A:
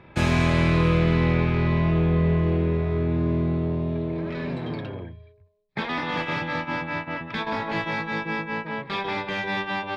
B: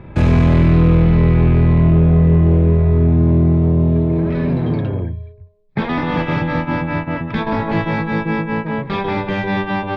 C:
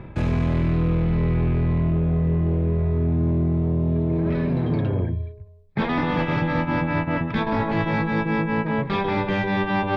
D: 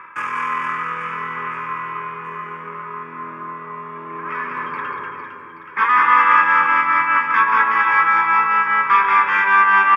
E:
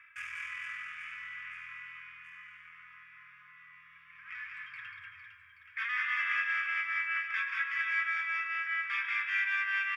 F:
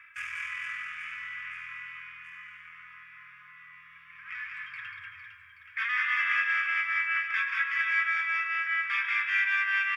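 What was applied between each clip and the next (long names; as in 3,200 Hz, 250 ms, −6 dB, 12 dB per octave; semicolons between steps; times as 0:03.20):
spectral tilt −3 dB per octave; in parallel at +1 dB: brickwall limiter −13 dBFS, peak gain reduction 10 dB; on the sum: soft clipping −5.5 dBFS, distortion −16 dB
hum removal 85.77 Hz, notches 11; reversed playback; downward compressor, threshold −20 dBFS, peak gain reduction 11 dB; reversed playback; level +1 dB
high-pass with resonance 1,100 Hz, resonance Q 4.9; phaser with its sweep stopped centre 1,700 Hz, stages 4; reverse bouncing-ball delay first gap 190 ms, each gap 1.4×, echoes 5; level +8.5 dB
inverse Chebyshev band-stop filter 230–760 Hz, stop band 60 dB; level −8.5 dB
level +4.5 dB; AAC 192 kbit/s 48,000 Hz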